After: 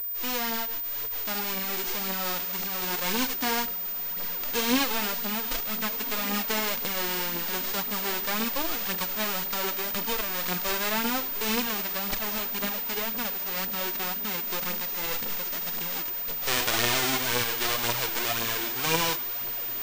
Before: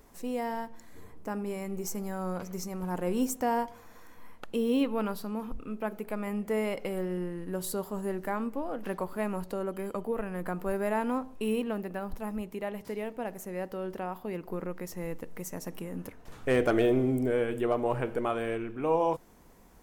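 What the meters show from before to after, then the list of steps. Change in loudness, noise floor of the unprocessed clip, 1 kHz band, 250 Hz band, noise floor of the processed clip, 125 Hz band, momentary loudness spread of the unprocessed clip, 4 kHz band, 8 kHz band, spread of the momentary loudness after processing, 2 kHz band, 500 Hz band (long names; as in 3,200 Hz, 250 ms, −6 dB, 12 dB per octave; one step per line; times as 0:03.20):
+6.0 dB, −53 dBFS, +3.0 dB, −3.0 dB, −32 dBFS, −3.0 dB, 11 LU, +19.0 dB, +13.0 dB, 4 LU, +10.5 dB, −5.0 dB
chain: spectral envelope flattened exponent 0.1
in parallel at 0 dB: brickwall limiter −17.5 dBFS, peak gain reduction 10.5 dB
on the sum: feedback delay with all-pass diffusion 1,508 ms, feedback 58%, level −13.5 dB
phase shifter 1.9 Hz, delay 3.5 ms, feedback 46%
switching amplifier with a slow clock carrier 15,000 Hz
level −3 dB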